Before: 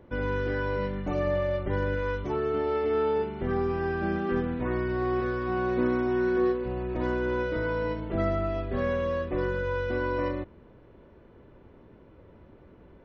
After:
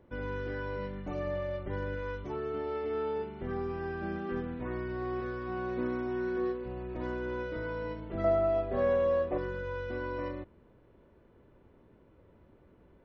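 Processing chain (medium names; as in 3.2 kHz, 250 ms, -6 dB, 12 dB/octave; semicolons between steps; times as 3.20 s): 8.24–9.38 s: peaking EQ 670 Hz +12 dB 1.3 oct; trim -7.5 dB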